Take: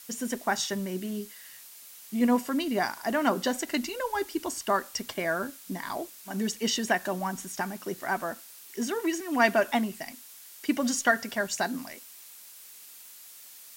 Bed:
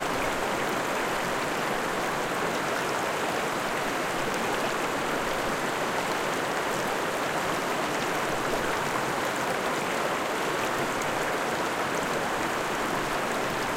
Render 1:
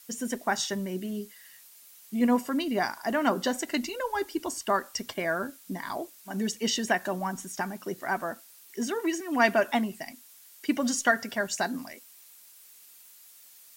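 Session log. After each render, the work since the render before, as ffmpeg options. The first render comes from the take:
-af "afftdn=nr=6:nf=-49"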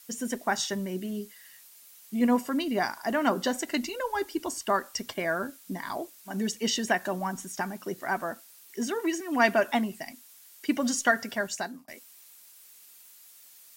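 -filter_complex "[0:a]asplit=2[a][b];[a]atrim=end=11.88,asetpts=PTS-STARTPTS,afade=t=out:st=11.24:d=0.64:c=qsin[c];[b]atrim=start=11.88,asetpts=PTS-STARTPTS,afade=t=in:d=0.004:c=hsin[d];[c][d]concat=n=2:v=0:a=1"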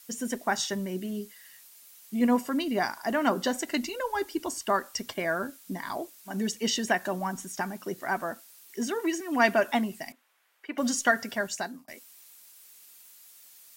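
-filter_complex "[0:a]asettb=1/sr,asplit=3[a][b][c];[a]atrim=end=10.124[d];[b]atrim=start=10.12:end=10.78,asetpts=PTS-STARTPTS,afade=t=in:d=0.004:c=qsin,afade=t=out:st=0.656:d=0.004:c=qsin,acrossover=split=440 2500:gain=0.112 1 0.0794[e][f][g];[e][f][g]amix=inputs=3:normalize=0[h];[c]atrim=start=10.776[i];[d][h]acrossfade=d=0.004:c1=hsin:c2=qsin[j];[j][i]acrossfade=d=0.004:c1=qsin:c2=hsin"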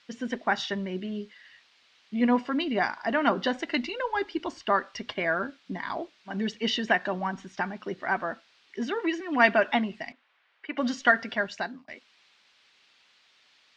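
-af "lowpass=f=4.2k:w=0.5412,lowpass=f=4.2k:w=1.3066,equalizer=f=2.4k:w=0.56:g=4"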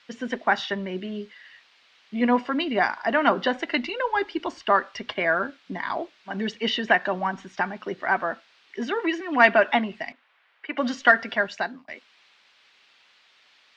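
-filter_complex "[0:a]acrossover=split=380|3700[a][b][c];[b]acontrast=22[d];[c]alimiter=level_in=8.5dB:limit=-24dB:level=0:latency=1:release=390,volume=-8.5dB[e];[a][d][e]amix=inputs=3:normalize=0"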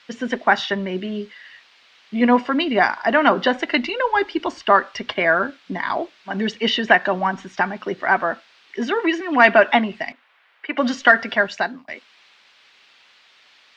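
-af "volume=5.5dB,alimiter=limit=-1dB:level=0:latency=1"

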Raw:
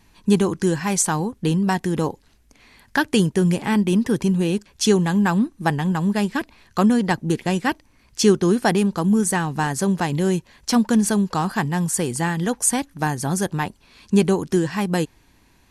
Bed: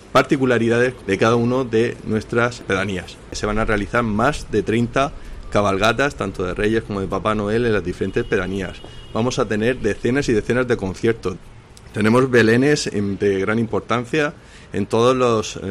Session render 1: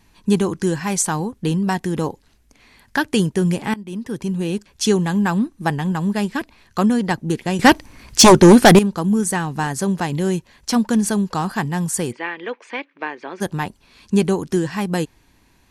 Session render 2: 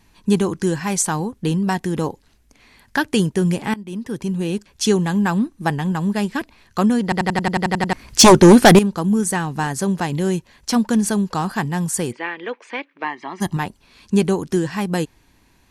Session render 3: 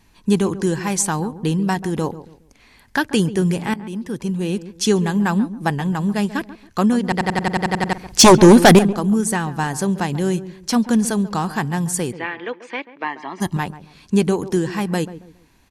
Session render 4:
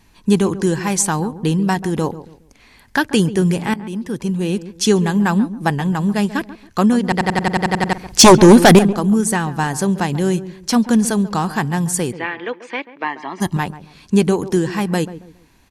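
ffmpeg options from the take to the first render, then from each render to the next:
-filter_complex "[0:a]asettb=1/sr,asplit=3[a][b][c];[a]atrim=end=7.594[d];[b]atrim=start=7.59:end=8.79,asetpts=PTS-STARTPTS,afade=t=in:d=0.004:c=qsin,afade=t=out:st=1.196:d=0.004:c=qsin,aeval=exprs='0.708*sin(PI/2*3.16*val(0)/0.708)':c=same[e];[c]atrim=start=8.786[f];[d][e]acrossfade=d=0.004:c1=hsin:c2=qsin[g];[g][f]acrossfade=d=0.004:c1=qsin:c2=hsin,asplit=3[h][i][j];[h]afade=t=out:st=12.11:d=0.02[k];[i]highpass=f=360:w=0.5412,highpass=f=360:w=1.3066,equalizer=f=770:t=q:w=4:g=-9,equalizer=f=1.4k:t=q:w=4:g=-3,equalizer=f=2.3k:t=q:w=4:g=8,lowpass=f=3.1k:w=0.5412,lowpass=f=3.1k:w=1.3066,afade=t=in:st=12.11:d=0.02,afade=t=out:st=13.4:d=0.02[l];[j]afade=t=in:st=13.4:d=0.02[m];[k][l][m]amix=inputs=3:normalize=0,asplit=2[n][o];[n]atrim=end=3.74,asetpts=PTS-STARTPTS,afade=t=out:st=3.736:d=0.004:c=hsin:silence=0.1[p];[o]atrim=start=3.74,asetpts=PTS-STARTPTS,afade=t=in:d=0.93:silence=0.1[q];[p][q]concat=n=2:v=0:a=1"
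-filter_complex "[0:a]asettb=1/sr,asplit=3[a][b][c];[a]atrim=end=13.044[d];[b]atrim=start=13.04:end=13.57,asetpts=PTS-STARTPTS,afade=t=in:d=0.004:c=qsin,afade=t=out:st=0.526:d=0.004:c=qsin,aecho=1:1:1:0.84,atrim=end_sample=23373[e];[c]atrim=start=13.566[f];[d][e]acrossfade=d=0.004:c1=hsin:c2=qsin[g];[g][f]acrossfade=d=0.004:c1=qsin:c2=hsin,asplit=11[h][i][j][k][l][m][n][o][p][q][r];[h]atrim=end=7.122[s];[i]atrim=start=7.028:end=7.122[t];[j]atrim=start=7.028:end=7.122[u];[k]atrim=start=7.028:end=7.122[v];[l]atrim=start=7.028:end=7.122[w];[m]atrim=start=7.028:end=7.122[x];[n]atrim=start=7.028:end=7.122[y];[o]atrim=start=7.028:end=7.122[z];[p]atrim=start=7.028:end=7.122[aa];[q]atrim=start=7.028:end=7.122[ab];[r]atrim=start=7.928[ac];[s][t]acrossfade=d=0.004:c1=hsin:c2=hsin[ad];[ad][u]acrossfade=d=0.004:c1=hsin:c2=hsin[ae];[ae][v]acrossfade=d=0.004:c1=hsin:c2=hsin[af];[af][w]acrossfade=d=0.004:c1=hsin:c2=hsin[ag];[ag][x]acrossfade=d=0.004:c1=hsin:c2=hsin[ah];[ah][y]acrossfade=d=0.004:c1=hsin:c2=hsin[ai];[ai][z]acrossfade=d=0.004:c1=hsin:c2=hsin[aj];[aj][aa]acrossfade=d=0.004:c1=hsin:c2=hsin[ak];[ak][ab]acrossfade=d=0.004:c1=hsin:c2=hsin[al];[al][ac]acrossfade=d=0.004:c1=hsin:c2=hsin"
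-filter_complex "[0:a]asplit=2[a][b];[b]adelay=138,lowpass=f=880:p=1,volume=-13dB,asplit=2[c][d];[d]adelay=138,lowpass=f=880:p=1,volume=0.33,asplit=2[e][f];[f]adelay=138,lowpass=f=880:p=1,volume=0.33[g];[a][c][e][g]amix=inputs=4:normalize=0"
-af "volume=2.5dB,alimiter=limit=-1dB:level=0:latency=1"

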